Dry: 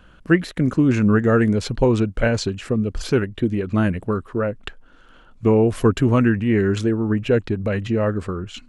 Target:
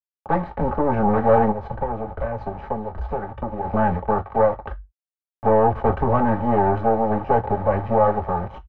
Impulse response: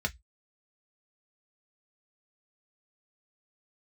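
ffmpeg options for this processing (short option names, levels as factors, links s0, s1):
-filter_complex "[0:a]volume=5.96,asoftclip=hard,volume=0.168,aecho=1:1:68|136|204|272:0.0708|0.0418|0.0246|0.0145,acrusher=bits=3:dc=4:mix=0:aa=0.000001[s0];[1:a]atrim=start_sample=2205,asetrate=37926,aresample=44100[s1];[s0][s1]afir=irnorm=-1:irlink=0,asplit=3[s2][s3][s4];[s2]afade=t=out:st=1.51:d=0.02[s5];[s3]acompressor=threshold=0.0794:ratio=6,afade=t=in:st=1.51:d=0.02,afade=t=out:st=3.64:d=0.02[s6];[s4]afade=t=in:st=3.64:d=0.02[s7];[s5][s6][s7]amix=inputs=3:normalize=0,lowpass=f=850:t=q:w=4.9,equalizer=f=190:w=0.55:g=-7.5"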